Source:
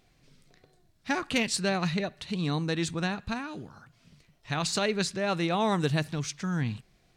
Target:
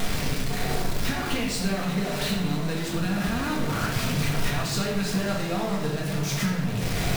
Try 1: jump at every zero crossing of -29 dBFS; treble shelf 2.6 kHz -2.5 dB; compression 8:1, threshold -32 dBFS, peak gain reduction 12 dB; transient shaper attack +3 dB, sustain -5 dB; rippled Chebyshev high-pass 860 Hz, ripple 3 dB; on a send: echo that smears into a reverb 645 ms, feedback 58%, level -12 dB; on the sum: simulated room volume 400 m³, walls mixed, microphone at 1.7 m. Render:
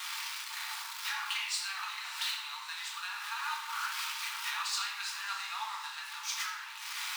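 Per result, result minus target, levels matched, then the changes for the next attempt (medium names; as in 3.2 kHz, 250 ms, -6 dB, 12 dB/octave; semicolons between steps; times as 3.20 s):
jump at every zero crossing: distortion -6 dB; 1 kHz band +3.0 dB
change: jump at every zero crossing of -19.5 dBFS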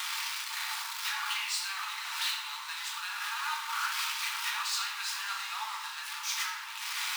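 1 kHz band +2.5 dB
remove: rippled Chebyshev high-pass 860 Hz, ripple 3 dB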